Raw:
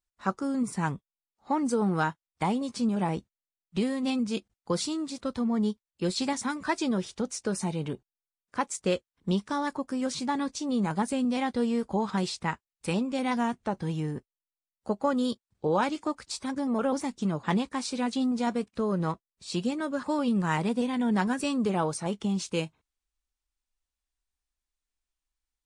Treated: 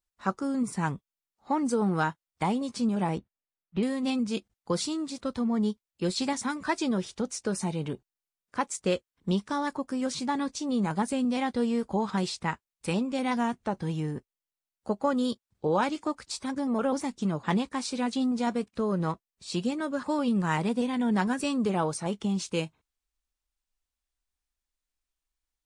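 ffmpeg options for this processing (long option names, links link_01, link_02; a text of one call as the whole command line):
ffmpeg -i in.wav -filter_complex "[0:a]asettb=1/sr,asplit=3[link_01][link_02][link_03];[link_01]atrim=end=3.184[link_04];[link_02]atrim=start=3.18:end=3.83,asetpts=PTS-STARTPTS,afade=type=in:duration=0.004:curve=qsin,afade=type=out:start_time=0.646:duration=0.004:curve=qsin,lowpass=2400[link_05];[link_03]atrim=start=3.826[link_06];[link_04][link_05]acrossfade=duration=0.004:curve1=hsin:curve2=qsin[link_07];[link_07][link_06]acrossfade=duration=0.004:curve1=qsin:curve2=hsin" out.wav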